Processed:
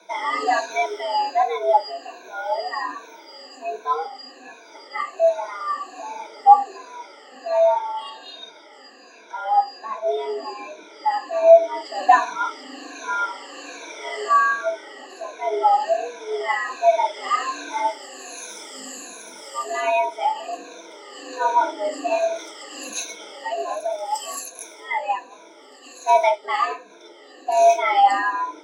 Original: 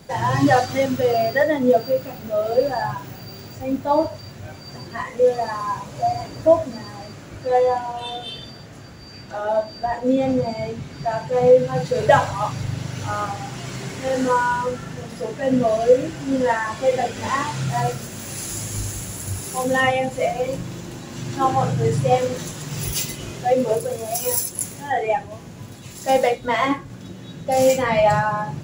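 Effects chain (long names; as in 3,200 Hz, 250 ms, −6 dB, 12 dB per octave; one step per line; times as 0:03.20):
rippled gain that drifts along the octave scale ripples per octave 1.4, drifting −1.3 Hz, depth 23 dB
three-way crossover with the lows and the highs turned down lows −16 dB, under 280 Hz, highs −23 dB, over 7,700 Hz
frequency shifter +160 Hz
level −6.5 dB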